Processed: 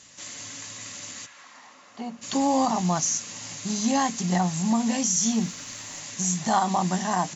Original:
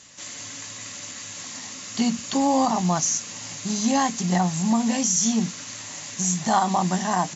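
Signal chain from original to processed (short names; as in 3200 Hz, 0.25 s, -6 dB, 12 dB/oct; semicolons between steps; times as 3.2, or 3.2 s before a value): 1.25–2.21 band-pass 1500 Hz -> 620 Hz, Q 1.3; 5.17–6 added noise pink -59 dBFS; gain -2 dB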